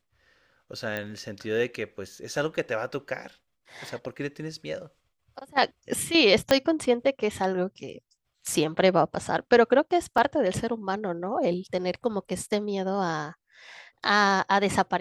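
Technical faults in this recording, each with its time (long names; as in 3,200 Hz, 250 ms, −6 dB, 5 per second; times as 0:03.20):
0:00.97: click −17 dBFS
0:06.51: click −5 dBFS
0:10.18: drop-out 2.2 ms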